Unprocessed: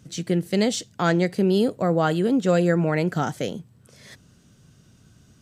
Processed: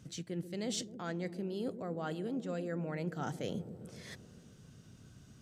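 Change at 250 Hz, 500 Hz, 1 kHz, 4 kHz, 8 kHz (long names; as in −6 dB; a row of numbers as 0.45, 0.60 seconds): −16.5, −17.0, −17.0, −13.0, −10.5 decibels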